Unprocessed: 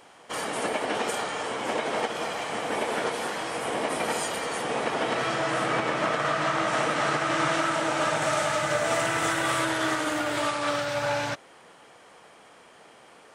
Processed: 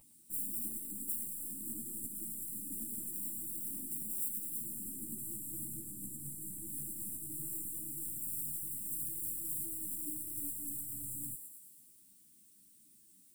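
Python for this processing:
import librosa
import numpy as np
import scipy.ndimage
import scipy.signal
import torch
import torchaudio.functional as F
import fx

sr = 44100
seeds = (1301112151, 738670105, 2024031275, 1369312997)

y = fx.tracing_dist(x, sr, depth_ms=0.3)
y = fx.tilt_eq(y, sr, slope=3.5)
y = fx.rider(y, sr, range_db=10, speed_s=0.5)
y = fx.bass_treble(y, sr, bass_db=1, treble_db=-7)
y = fx.vibrato(y, sr, rate_hz=8.3, depth_cents=35.0)
y = fx.brickwall_bandstop(y, sr, low_hz=420.0, high_hz=7300.0)
y = fx.fixed_phaser(y, sr, hz=1500.0, stages=6)
y = fx.dmg_noise_colour(y, sr, seeds[0], colour='violet', level_db=-62.0)
y = fx.echo_thinned(y, sr, ms=111, feedback_pct=65, hz=870.0, wet_db=-8.0)
y = fx.ensemble(y, sr)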